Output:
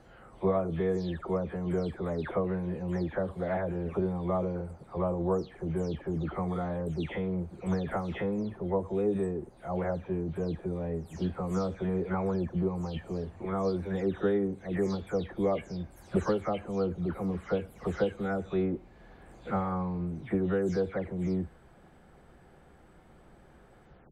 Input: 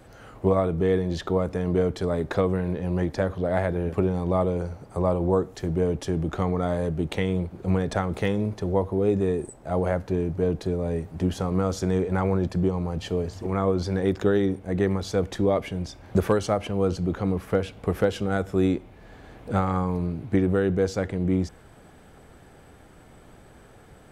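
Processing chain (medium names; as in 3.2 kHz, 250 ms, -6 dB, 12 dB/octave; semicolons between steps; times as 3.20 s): delay that grows with frequency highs early, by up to 254 ms; treble shelf 3.7 kHz -9.5 dB; trim -5 dB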